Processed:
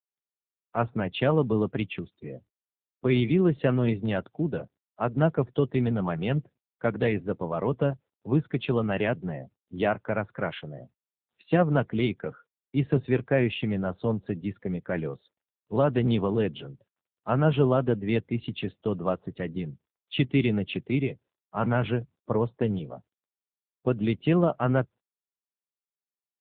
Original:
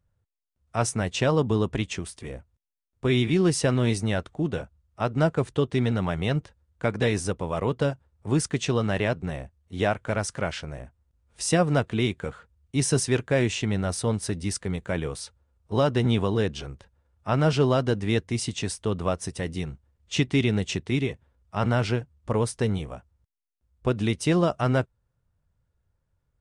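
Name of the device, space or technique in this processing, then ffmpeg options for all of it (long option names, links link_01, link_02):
mobile call with aggressive noise cancelling: -af "highpass=frequency=110:width=0.5412,highpass=frequency=110:width=1.3066,afftdn=noise_reduction=28:noise_floor=-41" -ar 8000 -c:a libopencore_amrnb -b:a 7950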